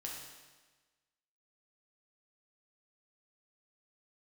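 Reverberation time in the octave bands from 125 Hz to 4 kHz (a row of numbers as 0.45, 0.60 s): 1.3, 1.3, 1.3, 1.3, 1.3, 1.3 s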